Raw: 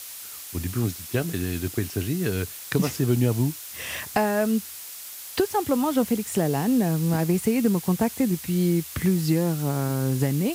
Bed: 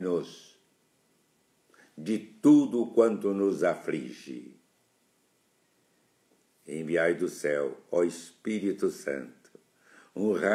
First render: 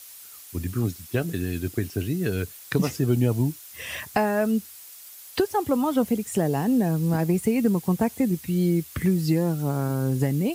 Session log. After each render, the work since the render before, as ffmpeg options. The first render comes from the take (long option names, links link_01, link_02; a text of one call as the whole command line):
ffmpeg -i in.wav -af "afftdn=noise_reduction=8:noise_floor=-39" out.wav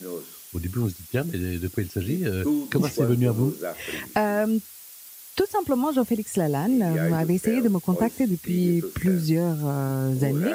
ffmpeg -i in.wav -i bed.wav -filter_complex "[1:a]volume=-5.5dB[link_01];[0:a][link_01]amix=inputs=2:normalize=0" out.wav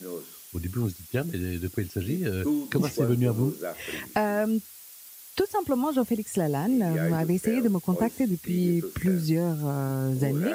ffmpeg -i in.wav -af "volume=-2.5dB" out.wav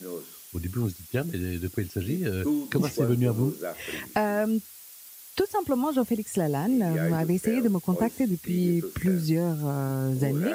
ffmpeg -i in.wav -af anull out.wav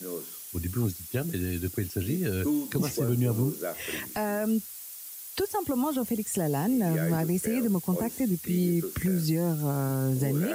ffmpeg -i in.wav -filter_complex "[0:a]acrossover=split=130|6000[link_01][link_02][link_03];[link_02]alimiter=limit=-20.5dB:level=0:latency=1[link_04];[link_03]acontrast=31[link_05];[link_01][link_04][link_05]amix=inputs=3:normalize=0" out.wav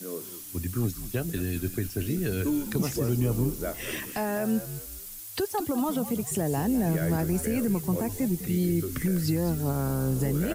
ffmpeg -i in.wav -filter_complex "[0:a]asplit=5[link_01][link_02][link_03][link_04][link_05];[link_02]adelay=202,afreqshift=-81,volume=-12dB[link_06];[link_03]adelay=404,afreqshift=-162,volume=-20dB[link_07];[link_04]adelay=606,afreqshift=-243,volume=-27.9dB[link_08];[link_05]adelay=808,afreqshift=-324,volume=-35.9dB[link_09];[link_01][link_06][link_07][link_08][link_09]amix=inputs=5:normalize=0" out.wav